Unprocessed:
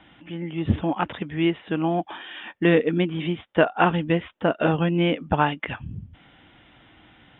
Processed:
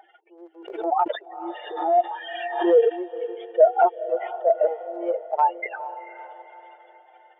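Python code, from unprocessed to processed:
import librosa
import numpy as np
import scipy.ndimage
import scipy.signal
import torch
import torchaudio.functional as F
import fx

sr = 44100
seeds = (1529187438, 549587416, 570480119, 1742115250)

y = fx.spec_expand(x, sr, power=3.3)
y = fx.peak_eq(y, sr, hz=620.0, db=10.5, octaves=0.88)
y = fx.notch(y, sr, hz=1000.0, q=12.0)
y = fx.transient(y, sr, attack_db=-8, sustain_db=0)
y = fx.rider(y, sr, range_db=4, speed_s=2.0)
y = fx.brickwall_highpass(y, sr, low_hz=360.0)
y = fx.echo_diffused(y, sr, ms=462, feedback_pct=45, wet_db=-13)
y = fx.pre_swell(y, sr, db_per_s=72.0, at=(0.6, 2.96), fade=0.02)
y = y * 10.0 ** (1.0 / 20.0)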